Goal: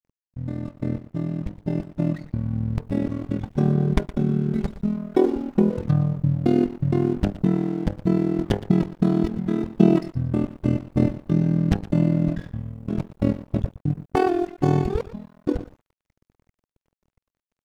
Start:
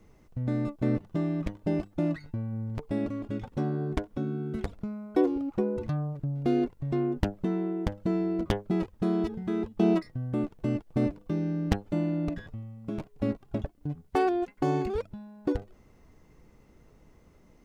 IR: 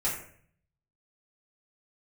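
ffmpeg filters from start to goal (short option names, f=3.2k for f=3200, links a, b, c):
-filter_complex "[0:a]adynamicequalizer=threshold=0.00794:dfrequency=170:dqfactor=1.9:tfrequency=170:tqfactor=1.9:attack=5:release=100:ratio=0.375:range=2:mode=boostabove:tftype=bell,tremolo=f=41:d=0.788,asettb=1/sr,asplit=3[a][b][c];[a]atrim=end=3.454[d];[b]atrim=start=3.45:end=5.71,asetpts=PTS-STARTPTS,afade=t=in:d=0.004:c=qsin,afade=t=out:st=2.256:d=0.004:c=qsin,aecho=1:1:5:0.56,atrim=end_sample=99666[e];[c]atrim=start=5.706[f];[d][e]acrossfade=d=0.004:c1=hsin:c2=qsin[g];[g][f]acrossfade=d=0.004:c1=qsin:c2=hsin,aecho=1:1:117|234:0.188|0.0433,aeval=exprs='sgn(val(0))*max(abs(val(0))-0.00251,0)':c=same,dynaudnorm=f=320:g=13:m=9dB,bass=f=250:g=5,treble=f=4k:g=1,volume=-1dB"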